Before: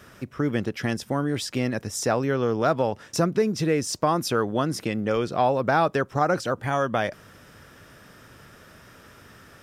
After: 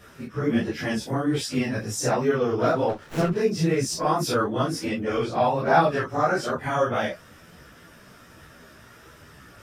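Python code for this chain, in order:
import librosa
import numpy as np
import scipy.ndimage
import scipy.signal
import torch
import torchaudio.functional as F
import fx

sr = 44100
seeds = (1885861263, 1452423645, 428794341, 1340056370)

y = fx.phase_scramble(x, sr, seeds[0], window_ms=100)
y = fx.chorus_voices(y, sr, voices=2, hz=1.3, base_ms=15, depth_ms=3.0, mix_pct=50)
y = fx.running_max(y, sr, window=9, at=(2.88, 3.34), fade=0.02)
y = F.gain(torch.from_numpy(y), 3.5).numpy()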